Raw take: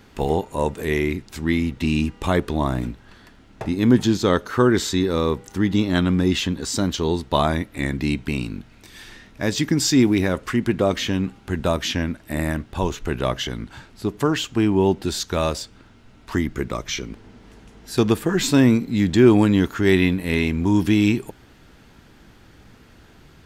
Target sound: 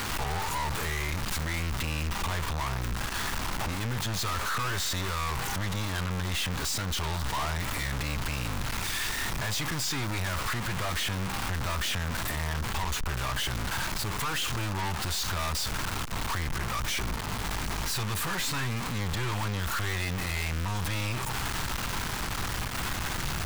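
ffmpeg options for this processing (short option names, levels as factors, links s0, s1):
-filter_complex "[0:a]aeval=exprs='val(0)+0.5*0.0841*sgn(val(0))':c=same,acrossover=split=140|710|2900[s0][s1][s2][s3];[s1]acompressor=threshold=0.0501:ratio=6[s4];[s3]alimiter=limit=0.119:level=0:latency=1:release=221[s5];[s0][s4][s2][s5]amix=inputs=4:normalize=0,equalizer=f=250:t=o:w=1:g=-7,equalizer=f=500:t=o:w=1:g=-10,equalizer=f=1000:t=o:w=1:g=6,aeval=exprs='(tanh(39.8*val(0)+0.6)-tanh(0.6))/39.8':c=same,volume=1.41"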